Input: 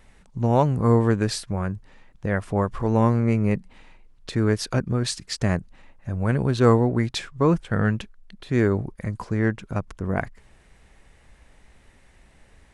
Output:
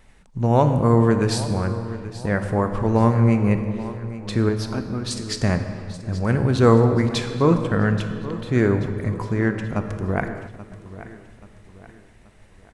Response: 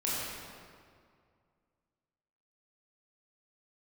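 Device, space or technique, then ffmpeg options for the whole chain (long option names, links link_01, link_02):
keyed gated reverb: -filter_complex "[0:a]asettb=1/sr,asplit=3[link_01][link_02][link_03];[link_01]atrim=end=4.494[link_04];[link_02]atrim=start=4.49:end=5.11,asetpts=PTS-STARTPTS,afade=type=in:duration=0.004:curve=qsin,afade=type=out:start_time=0.616:duration=0.004:curve=qsin,equalizer=frequency=125:width_type=o:width=1:gain=-10,equalizer=frequency=500:width_type=o:width=1:gain=-9,equalizer=frequency=2000:width_type=o:width=1:gain=-9,equalizer=frequency=8000:width_type=o:width=1:gain=-11[link_05];[link_03]atrim=start=5.106[link_06];[link_04][link_05]acrossfade=duration=0.004:curve1=hsin:curve2=qsin[link_07];[link_07][link_06]acrossfade=duration=0.004:curve1=qsin:curve2=hsin,asplit=3[link_08][link_09][link_10];[1:a]atrim=start_sample=2205[link_11];[link_09][link_11]afir=irnorm=-1:irlink=0[link_12];[link_10]apad=whole_len=561591[link_13];[link_12][link_13]sidechaingate=range=-16dB:threshold=-49dB:ratio=16:detection=peak,volume=-12dB[link_14];[link_08][link_14]amix=inputs=2:normalize=0,aecho=1:1:831|1662|2493|3324:0.168|0.0705|0.0296|0.0124"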